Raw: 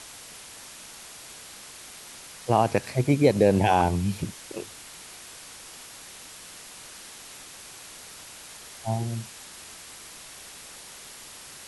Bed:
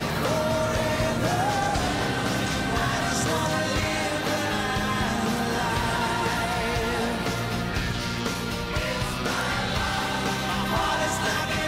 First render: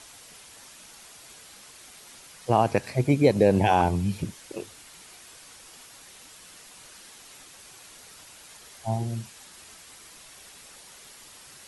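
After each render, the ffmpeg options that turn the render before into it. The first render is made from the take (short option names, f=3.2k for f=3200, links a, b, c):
-af "afftdn=nr=6:nf=-45"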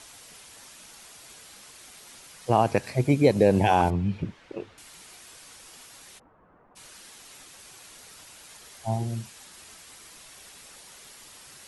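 -filter_complex "[0:a]asettb=1/sr,asplit=3[a][b][c];[a]atrim=end=3.904[d];[b]atrim=start=3.9:end=4.78,asetpts=PTS-STARTPTS,afade=t=in:d=0.004:c=qsin,afade=t=out:st=0.876:d=0.004:c=qsin,lowpass=2.5k[e];[c]atrim=start=4.776[f];[d][e]acrossfade=d=0.004:c1=hsin:c2=qsin[g];[g][f]acrossfade=d=0.004:c1=qsin:c2=hsin,asplit=3[h][i][j];[h]afade=t=out:st=6.18:d=0.02[k];[i]lowpass=f=1.2k:w=0.5412,lowpass=f=1.2k:w=1.3066,afade=t=in:st=6.18:d=0.02,afade=t=out:st=6.75:d=0.02[l];[j]afade=t=in:st=6.75:d=0.02[m];[k][l][m]amix=inputs=3:normalize=0"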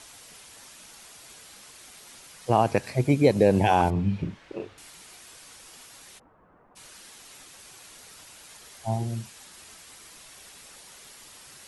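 -filter_complex "[0:a]asettb=1/sr,asplit=3[a][b][c];[a]atrim=end=3.924[d];[b]atrim=start=3.92:end=4.91,asetpts=PTS-STARTPTS,afade=t=in:d=0.004:c=qsin,afade=t=out:st=0.986:d=0.004:c=qsin,asplit=2[e][f];[f]adelay=41,volume=-6dB[g];[e][g]amix=inputs=2:normalize=0,atrim=end_sample=43659[h];[c]atrim=start=4.906[i];[d][h]acrossfade=d=0.004:c1=hsin:c2=qsin[j];[j][i]acrossfade=d=0.004:c1=qsin:c2=hsin"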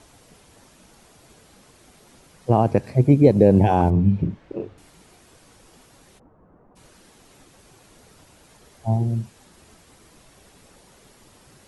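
-af "tiltshelf=f=860:g=8.5"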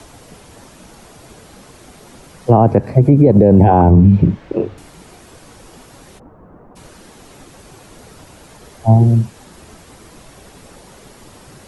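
-filter_complex "[0:a]acrossover=split=170|450|1600[a][b][c][d];[d]acompressor=threshold=-57dB:ratio=4[e];[a][b][c][e]amix=inputs=4:normalize=0,alimiter=level_in=12dB:limit=-1dB:release=50:level=0:latency=1"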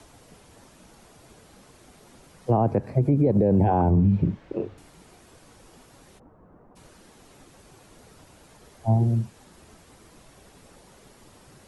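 -af "volume=-11dB"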